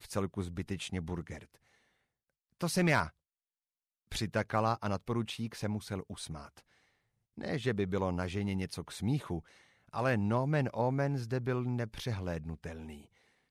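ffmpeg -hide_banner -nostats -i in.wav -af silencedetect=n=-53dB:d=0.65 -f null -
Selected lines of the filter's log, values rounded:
silence_start: 1.56
silence_end: 2.61 | silence_duration: 1.05
silence_start: 3.10
silence_end: 4.11 | silence_duration: 1.02
silence_start: 6.60
silence_end: 7.37 | silence_duration: 0.77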